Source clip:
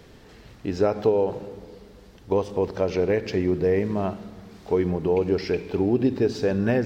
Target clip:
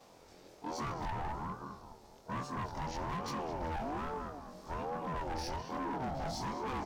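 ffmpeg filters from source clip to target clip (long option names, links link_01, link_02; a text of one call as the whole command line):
ffmpeg -i in.wav -filter_complex "[0:a]afftfilt=real='re':imag='-im':win_size=2048:overlap=0.75,highshelf=frequency=4100:width_type=q:width=1.5:gain=6,asplit=2[link_01][link_02];[link_02]adelay=209,lowpass=frequency=1700:poles=1,volume=-5.5dB,asplit=2[link_03][link_04];[link_04]adelay=209,lowpass=frequency=1700:poles=1,volume=0.44,asplit=2[link_05][link_06];[link_06]adelay=209,lowpass=frequency=1700:poles=1,volume=0.44,asplit=2[link_07][link_08];[link_08]adelay=209,lowpass=frequency=1700:poles=1,volume=0.44,asplit=2[link_09][link_10];[link_10]adelay=209,lowpass=frequency=1700:poles=1,volume=0.44[link_11];[link_01][link_03][link_05][link_07][link_09][link_11]amix=inputs=6:normalize=0,volume=29dB,asoftclip=hard,volume=-29dB,aeval=exprs='val(0)*sin(2*PI*530*n/s+530*0.25/1.2*sin(2*PI*1.2*n/s))':channel_layout=same,volume=-3.5dB" out.wav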